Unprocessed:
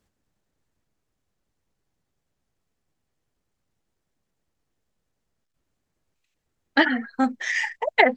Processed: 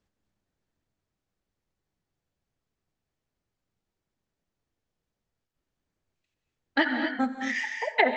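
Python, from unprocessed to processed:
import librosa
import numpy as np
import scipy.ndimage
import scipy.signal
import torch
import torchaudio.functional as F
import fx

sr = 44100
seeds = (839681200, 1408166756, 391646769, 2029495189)

p1 = scipy.signal.sosfilt(scipy.signal.butter(2, 6600.0, 'lowpass', fs=sr, output='sos'), x)
p2 = p1 + fx.echo_feedback(p1, sr, ms=87, feedback_pct=51, wet_db=-23.5, dry=0)
p3 = fx.rev_gated(p2, sr, seeds[0], gate_ms=280, shape='rising', drr_db=4.5)
y = p3 * librosa.db_to_amplitude(-5.5)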